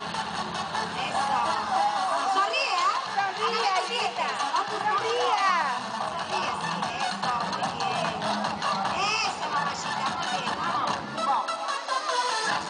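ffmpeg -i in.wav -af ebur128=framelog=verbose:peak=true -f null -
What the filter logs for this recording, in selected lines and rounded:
Integrated loudness:
  I:         -26.7 LUFS
  Threshold: -36.7 LUFS
Loudness range:
  LRA:         2.2 LU
  Threshold: -46.5 LUFS
  LRA low:   -27.5 LUFS
  LRA high:  -25.3 LUFS
True peak:
  Peak:      -12.1 dBFS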